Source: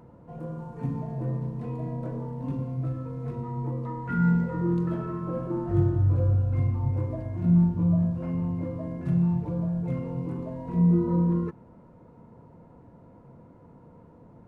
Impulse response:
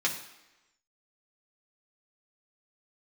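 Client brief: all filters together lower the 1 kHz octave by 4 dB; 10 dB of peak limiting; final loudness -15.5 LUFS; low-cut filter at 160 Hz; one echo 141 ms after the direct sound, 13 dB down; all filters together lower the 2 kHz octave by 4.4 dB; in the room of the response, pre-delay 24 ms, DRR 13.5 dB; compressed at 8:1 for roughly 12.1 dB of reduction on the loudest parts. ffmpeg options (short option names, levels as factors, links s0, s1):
-filter_complex "[0:a]highpass=160,equalizer=f=1000:t=o:g=-3.5,equalizer=f=2000:t=o:g=-5,acompressor=threshold=0.0251:ratio=8,alimiter=level_in=3.16:limit=0.0631:level=0:latency=1,volume=0.316,aecho=1:1:141:0.224,asplit=2[s0][s1];[1:a]atrim=start_sample=2205,adelay=24[s2];[s1][s2]afir=irnorm=-1:irlink=0,volume=0.0794[s3];[s0][s3]amix=inputs=2:normalize=0,volume=20"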